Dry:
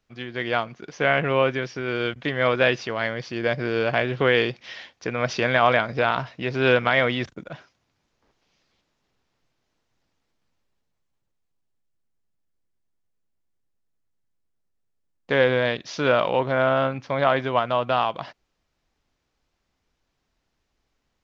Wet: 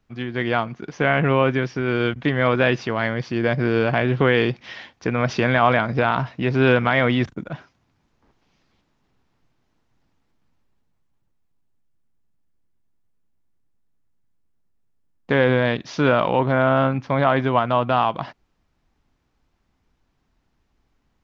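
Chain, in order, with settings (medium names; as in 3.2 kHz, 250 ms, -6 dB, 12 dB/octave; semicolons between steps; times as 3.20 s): in parallel at -1 dB: peak limiter -12.5 dBFS, peak gain reduction 8.5 dB; on the sum: FFT filter 260 Hz 0 dB, 550 Hz -7 dB, 860 Hz -3 dB, 4.8 kHz -10 dB; trim +3 dB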